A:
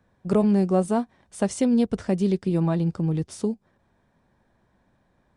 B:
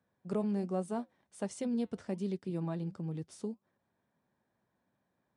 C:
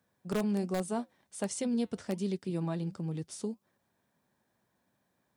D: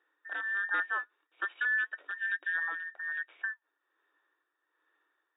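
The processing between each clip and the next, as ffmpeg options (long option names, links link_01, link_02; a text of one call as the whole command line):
ffmpeg -i in.wav -af "highpass=120,flanger=delay=1.4:depth=3.7:regen=-88:speed=1.3:shape=sinusoidal,volume=-8.5dB" out.wav
ffmpeg -i in.wav -filter_complex "[0:a]highshelf=frequency=2900:gain=8,asplit=2[link_01][link_02];[link_02]aeval=exprs='(mod(16.8*val(0)+1,2)-1)/16.8':channel_layout=same,volume=-5dB[link_03];[link_01][link_03]amix=inputs=2:normalize=0,volume=-1.5dB" out.wav
ffmpeg -i in.wav -af "afftfilt=real='real(if(between(b,1,1012),(2*floor((b-1)/92)+1)*92-b,b),0)':imag='imag(if(between(b,1,1012),(2*floor((b-1)/92)+1)*92-b,b),0)*if(between(b,1,1012),-1,1)':win_size=2048:overlap=0.75,tremolo=f=1.2:d=0.6,afftfilt=real='re*between(b*sr/4096,280,3800)':imag='im*between(b*sr/4096,280,3800)':win_size=4096:overlap=0.75,volume=2dB" out.wav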